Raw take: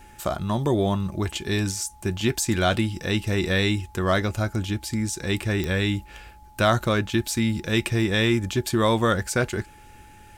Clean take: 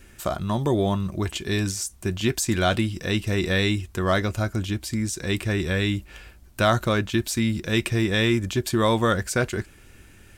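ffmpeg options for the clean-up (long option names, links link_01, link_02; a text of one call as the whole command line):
ffmpeg -i in.wav -af "adeclick=threshold=4,bandreject=frequency=850:width=30" out.wav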